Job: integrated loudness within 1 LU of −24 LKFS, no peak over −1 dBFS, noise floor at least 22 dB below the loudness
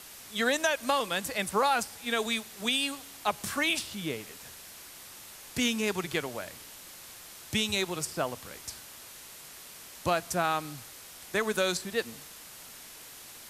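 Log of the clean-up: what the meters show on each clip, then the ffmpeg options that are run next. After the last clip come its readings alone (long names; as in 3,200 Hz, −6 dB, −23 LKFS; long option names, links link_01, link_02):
background noise floor −48 dBFS; target noise floor −53 dBFS; integrated loudness −30.5 LKFS; sample peak −13.5 dBFS; target loudness −24.0 LKFS
→ -af "afftdn=noise_reduction=6:noise_floor=-48"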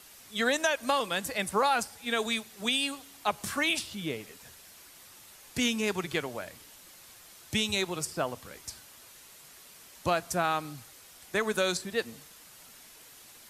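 background noise floor −53 dBFS; integrated loudness −30.5 LKFS; sample peak −13.5 dBFS; target loudness −24.0 LKFS
→ -af "volume=6.5dB"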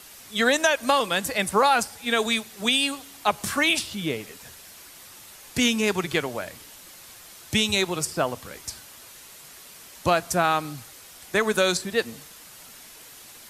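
integrated loudness −24.0 LKFS; sample peak −7.0 dBFS; background noise floor −47 dBFS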